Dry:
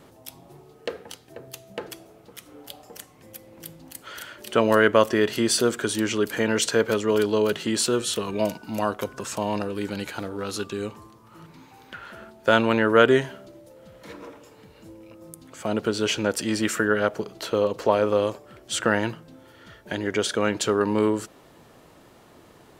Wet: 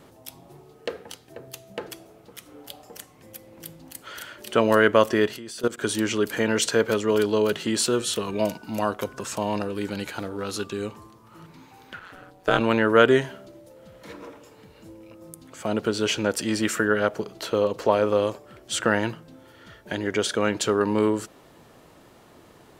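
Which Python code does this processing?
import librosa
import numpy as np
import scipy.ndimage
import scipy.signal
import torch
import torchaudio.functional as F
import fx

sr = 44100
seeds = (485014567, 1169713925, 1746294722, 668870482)

y = fx.level_steps(x, sr, step_db=19, at=(5.27, 5.82))
y = fx.ring_mod(y, sr, carrier_hz=91.0, at=(11.99, 12.59), fade=0.02)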